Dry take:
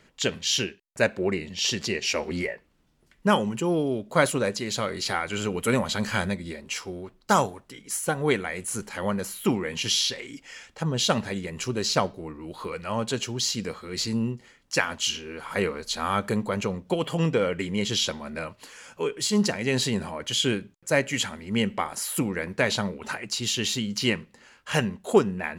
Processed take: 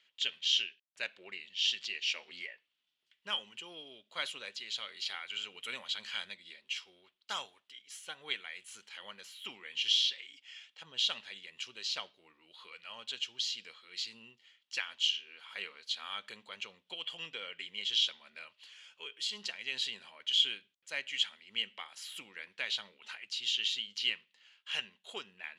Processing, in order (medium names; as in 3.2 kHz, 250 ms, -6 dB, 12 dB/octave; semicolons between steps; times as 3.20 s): band-pass filter 3.2 kHz, Q 3.6